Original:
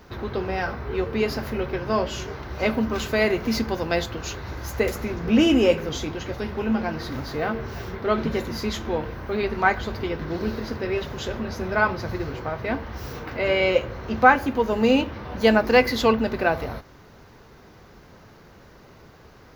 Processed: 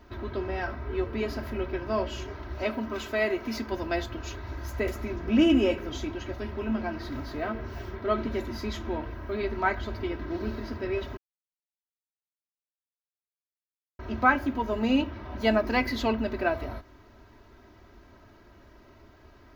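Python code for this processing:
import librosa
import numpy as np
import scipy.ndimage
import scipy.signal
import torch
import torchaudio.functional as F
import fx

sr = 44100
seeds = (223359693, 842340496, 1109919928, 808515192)

y = fx.low_shelf(x, sr, hz=150.0, db=-11.5, at=(2.62, 3.72))
y = fx.edit(y, sr, fx.silence(start_s=11.17, length_s=2.82), tone=tone)
y = fx.bass_treble(y, sr, bass_db=3, treble_db=-5)
y = y + 0.74 * np.pad(y, (int(3.1 * sr / 1000.0), 0))[:len(y)]
y = y * 10.0 ** (-7.5 / 20.0)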